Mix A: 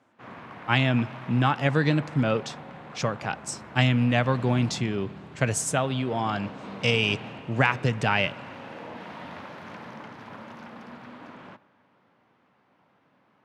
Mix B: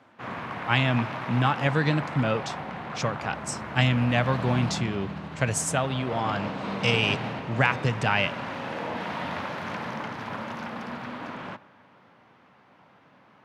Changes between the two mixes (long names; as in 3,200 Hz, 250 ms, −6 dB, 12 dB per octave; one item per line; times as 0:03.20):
background +9.0 dB
master: add parametric band 320 Hz −3 dB 1.5 octaves